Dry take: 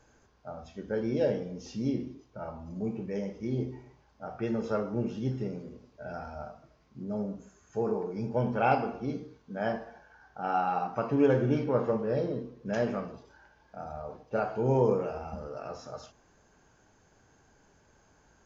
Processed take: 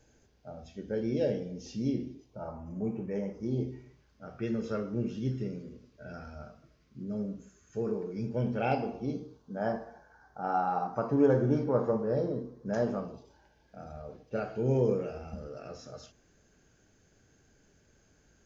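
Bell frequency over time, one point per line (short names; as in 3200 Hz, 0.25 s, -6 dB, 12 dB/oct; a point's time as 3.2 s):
bell -13.5 dB 0.89 oct
2.24 s 1100 Hz
2.64 s 4200 Hz
3.29 s 4200 Hz
3.78 s 830 Hz
8.37 s 830 Hz
9.69 s 2700 Hz
12.75 s 2700 Hz
13.82 s 940 Hz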